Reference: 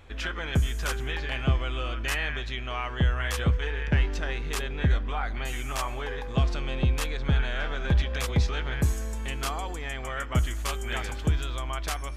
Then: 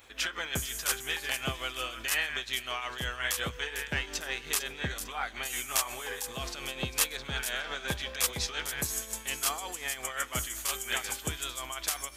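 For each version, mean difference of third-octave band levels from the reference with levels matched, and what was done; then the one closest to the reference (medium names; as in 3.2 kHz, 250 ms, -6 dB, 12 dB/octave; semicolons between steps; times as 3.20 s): 8.0 dB: RIAA curve recording; tremolo triangle 5.6 Hz, depth 65%; feedback echo behind a high-pass 450 ms, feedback 41%, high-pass 4.3 kHz, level -8.5 dB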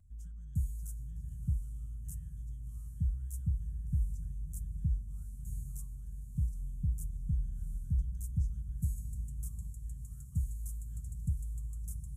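21.5 dB: inverse Chebyshev band-stop 330–4500 Hz, stop band 40 dB; vibrato 0.47 Hz 11 cents; echo that smears into a reverb 735 ms, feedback 55%, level -11 dB; trim -8.5 dB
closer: first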